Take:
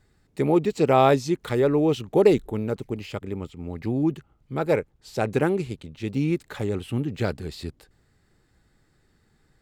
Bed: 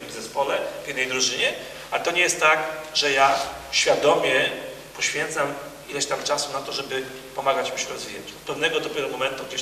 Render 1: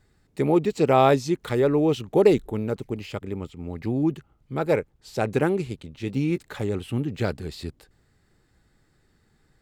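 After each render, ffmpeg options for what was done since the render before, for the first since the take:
-filter_complex "[0:a]asettb=1/sr,asplit=3[s0][s1][s2];[s0]atrim=end=5.894[s3];[s1]atrim=start=5.89:end=6.38,asetpts=PTS-STARTPTS,afade=t=in:d=0.004:c=qsin,afade=t=out:st=0.486:d=0.004:c=qsin,asplit=2[s4][s5];[s5]adelay=16,volume=0.224[s6];[s4][s6]amix=inputs=2:normalize=0,atrim=end_sample=21609[s7];[s2]atrim=start=6.376[s8];[s3][s7]acrossfade=d=0.004:c1=hsin:c2=qsin[s9];[s9][s8]acrossfade=d=0.004:c1=qsin:c2=hsin"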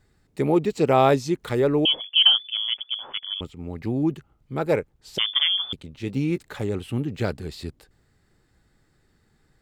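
-filter_complex "[0:a]asettb=1/sr,asplit=3[s0][s1][s2];[s0]atrim=end=1.854[s3];[s1]atrim=start=1.85:end=3.41,asetpts=PTS-STARTPTS,afade=t=in:d=0.004:c=qsin,afade=t=out:st=1.556:d=0.004:c=qsin,lowpass=f=3000:t=q:w=0.5098,lowpass=f=3000:t=q:w=0.6013,lowpass=f=3000:t=q:w=0.9,lowpass=f=3000:t=q:w=2.563,afreqshift=-3500[s4];[s2]atrim=start=3.406[s5];[s3][s4]acrossfade=d=0.004:c1=hsin:c2=qsin[s6];[s6][s5]acrossfade=d=0.004:c1=qsin:c2=hsin,asettb=1/sr,asplit=3[s7][s8][s9];[s7]atrim=end=5.184[s10];[s8]atrim=start=5.18:end=5.73,asetpts=PTS-STARTPTS,afade=t=in:d=0.004:c=qsin,afade=t=out:st=0.546:d=0.004:c=qsin,lowpass=f=3100:t=q:w=0.5098,lowpass=f=3100:t=q:w=0.6013,lowpass=f=3100:t=q:w=0.9,lowpass=f=3100:t=q:w=2.563,afreqshift=-3600[s11];[s9]atrim=start=5.726[s12];[s10][s11]acrossfade=d=0.004:c1=hsin:c2=qsin[s13];[s13][s12]acrossfade=d=0.004:c1=qsin:c2=hsin"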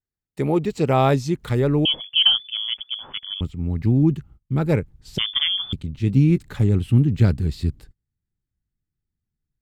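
-af "agate=range=0.0282:threshold=0.00224:ratio=16:detection=peak,asubboost=boost=6:cutoff=220"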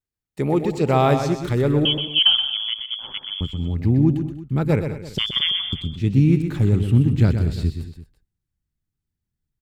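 -af "aecho=1:1:125|194|226|337:0.398|0.119|0.15|0.119"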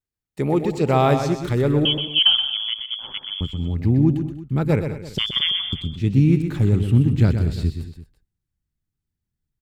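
-af anull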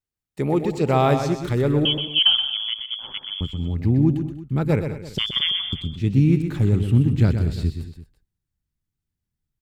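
-af "volume=0.891"

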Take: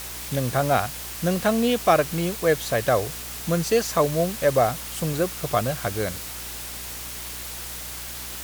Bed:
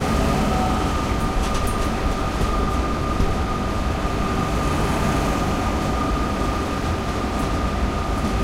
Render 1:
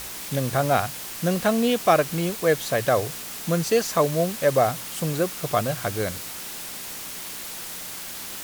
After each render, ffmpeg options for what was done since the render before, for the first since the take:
-af "bandreject=f=60:t=h:w=4,bandreject=f=120:t=h:w=4"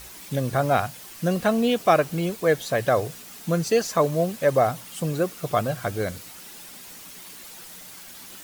-af "afftdn=nr=9:nf=-36"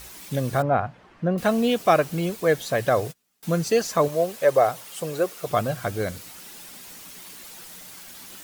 -filter_complex "[0:a]asettb=1/sr,asplit=3[s0][s1][s2];[s0]atrim=end=0.624[s3];[s1]atrim=start=0.62:end=1.38,asetpts=PTS-STARTPTS,afade=t=in:d=0.004:c=qsin,afade=t=out:st=0.756:d=0.004:c=qsin,lowpass=1500[s4];[s2]atrim=start=1.376[s5];[s3][s4]acrossfade=d=0.004:c1=hsin:c2=qsin[s6];[s6][s5]acrossfade=d=0.004:c1=qsin:c2=hsin,asettb=1/sr,asplit=3[s7][s8][s9];[s7]atrim=end=2.904[s10];[s8]atrim=start=2.9:end=3.43,asetpts=PTS-STARTPTS,afade=t=in:d=0.004:c=qsin,afade=t=out:st=0.526:d=0.004:c=qsin,agate=range=0.0316:threshold=0.0141:ratio=16:release=100:detection=peak[s11];[s9]atrim=start=3.426[s12];[s10][s11]acrossfade=d=0.004:c1=hsin:c2=qsin[s13];[s13][s12]acrossfade=d=0.004:c1=qsin:c2=hsin,asettb=1/sr,asplit=3[s14][s15][s16];[s14]atrim=end=4.084[s17];[s15]atrim=start=4.08:end=5.47,asetpts=PTS-STARTPTS,afade=t=in:d=0.004:c=qsin,afade=t=out:st=1.386:d=0.004:c=qsin,lowshelf=f=320:t=q:w=1.5:g=-7.5[s18];[s16]atrim=start=5.466[s19];[s17][s18]acrossfade=d=0.004:c1=hsin:c2=qsin[s20];[s20][s19]acrossfade=d=0.004:c1=qsin:c2=hsin"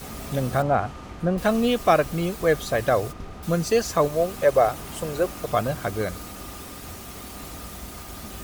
-filter_complex "[1:a]volume=0.133[s0];[0:a][s0]amix=inputs=2:normalize=0"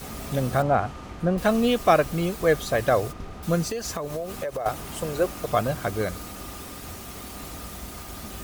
-filter_complex "[0:a]asettb=1/sr,asplit=3[s0][s1][s2];[s0]atrim=end=3.634[s3];[s1]atrim=start=3.63:end=4.66,asetpts=PTS-STARTPTS,afade=t=in:d=0.004:c=qsin,afade=t=out:st=1.026:d=0.004:c=qsin,acompressor=threshold=0.0501:ratio=12:attack=3.2:release=140:knee=1:detection=peak[s4];[s2]atrim=start=4.656[s5];[s3][s4]acrossfade=d=0.004:c1=hsin:c2=qsin[s6];[s6][s5]acrossfade=d=0.004:c1=qsin:c2=hsin"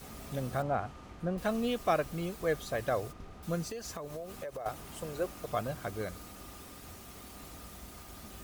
-af "volume=0.299"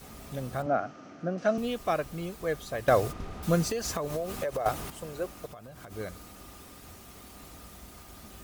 -filter_complex "[0:a]asettb=1/sr,asplit=3[s0][s1][s2];[s0]atrim=end=0.664[s3];[s1]atrim=start=0.66:end=1.58,asetpts=PTS-STARTPTS,afade=t=in:d=0.004:c=qsin,afade=t=out:st=0.916:d=0.004:c=qsin,highpass=f=130:w=0.5412,highpass=f=130:w=1.3066,equalizer=f=280:t=q:w=4:g=9,equalizer=f=640:t=q:w=4:g=9,equalizer=f=960:t=q:w=4:g=-7,equalizer=f=1400:t=q:w=4:g=7,equalizer=f=3700:t=q:w=4:g=-4,equalizer=f=5900:t=q:w=4:g=8,lowpass=f=6200:w=0.5412,lowpass=f=6200:w=1.3066[s4];[s2]atrim=start=1.576[s5];[s3][s4]acrossfade=d=0.004:c1=hsin:c2=qsin[s6];[s6][s5]acrossfade=d=0.004:c1=qsin:c2=hsin,asplit=3[s7][s8][s9];[s7]afade=t=out:st=5.46:d=0.02[s10];[s8]acompressor=threshold=0.00794:ratio=12:attack=3.2:release=140:knee=1:detection=peak,afade=t=in:st=5.46:d=0.02,afade=t=out:st=5.9:d=0.02[s11];[s9]afade=t=in:st=5.9:d=0.02[s12];[s10][s11][s12]amix=inputs=3:normalize=0,asplit=3[s13][s14][s15];[s13]atrim=end=2.882[s16];[s14]atrim=start=2.878:end=4.902,asetpts=PTS-STARTPTS,volume=2.82[s17];[s15]atrim=start=4.898[s18];[s16][s17]acrossfade=d=0.004:c1=hsin:c2=hsin[s19];[s19][s18]acrossfade=d=0.004:c1=hsin:c2=hsin"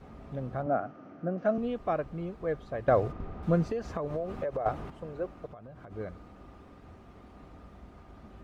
-af "lowpass=f=1400:p=1,aemphasis=mode=reproduction:type=75kf"

